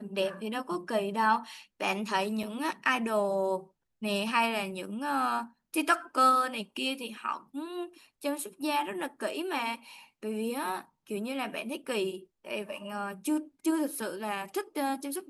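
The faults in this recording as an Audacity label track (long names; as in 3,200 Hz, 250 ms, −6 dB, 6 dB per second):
2.430000	2.430000	drop-out 4.1 ms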